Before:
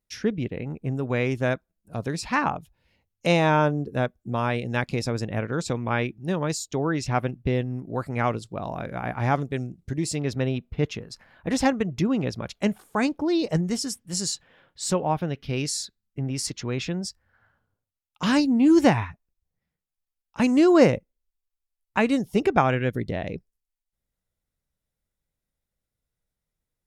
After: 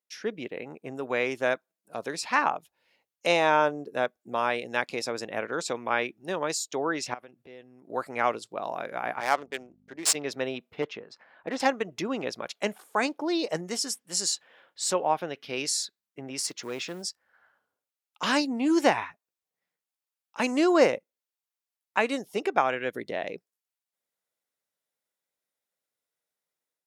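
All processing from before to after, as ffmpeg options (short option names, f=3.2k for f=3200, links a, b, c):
-filter_complex "[0:a]asettb=1/sr,asplit=3[a][b][c];[a]atrim=end=7.144[d];[b]atrim=start=7.14:end=7.9,asetpts=PTS-STARTPTS,afade=t=in:d=0.004:c=qsin,afade=t=out:st=0.756:d=0.004:c=qsin,highpass=52,acompressor=threshold=-42dB:ratio=4:attack=3.2:release=140:knee=1:detection=peak[e];[c]atrim=start=7.896[f];[d][e]acrossfade=d=0.004:c1=hsin:c2=qsin[g];[g][f]acrossfade=d=0.004:c1=qsin:c2=hsin,asettb=1/sr,asplit=3[h][i][j];[h]atrim=end=9.204[k];[i]atrim=start=9.2:end=10.15,asetpts=PTS-STARTPTS,afade=t=in:d=0.004:c=qsin,afade=t=out:st=0.946:d=0.004:c=qsin,aemphasis=mode=production:type=riaa,aeval=exprs='val(0)+0.00794*(sin(2*PI*50*n/s)+sin(2*PI*2*50*n/s)/2+sin(2*PI*3*50*n/s)/3+sin(2*PI*4*50*n/s)/4+sin(2*PI*5*50*n/s)/5)':c=same,adynamicsmooth=sensitivity=3.5:basefreq=1.1k[l];[j]atrim=start=10.146[m];[k][l]acrossfade=d=0.004:c1=hsin:c2=qsin[n];[n][m]acrossfade=d=0.004:c1=qsin:c2=hsin,asettb=1/sr,asplit=3[o][p][q];[o]atrim=end=10.824[r];[p]atrim=start=10.82:end=11.6,asetpts=PTS-STARTPTS,afade=t=in:d=0.004:c=qsin,afade=t=out:st=0.776:d=0.004:c=qsin,lowpass=5.4k,highshelf=f=3.6k:g=-11.5,volume=17.5dB,asoftclip=hard,volume=-17.5dB[s];[q]atrim=start=11.596[t];[r][s]acrossfade=d=0.004:c1=hsin:c2=qsin[u];[u][t]acrossfade=d=0.004:c1=qsin:c2=hsin,asettb=1/sr,asplit=3[v][w][x];[v]atrim=end=16.394[y];[w]atrim=start=16.39:end=17.03,asetpts=PTS-STARTPTS,afade=t=in:d=0.004:c=qsin,afade=t=out:st=0.636:d=0.004:c=qsin,equalizer=f=3.4k:t=o:w=2.9:g=-2.5,acrusher=bits=8:mode=log:mix=0:aa=0.000001,asoftclip=type=hard:threshold=-23dB[z];[x]atrim=start=17.026[aa];[y][z]acrossfade=d=0.004:c1=hsin:c2=qsin[ab];[ab][aa]acrossfade=d=0.004:c1=qsin:c2=hsin,highpass=440,dynaudnorm=f=170:g=3:m=6dB,volume=-5dB"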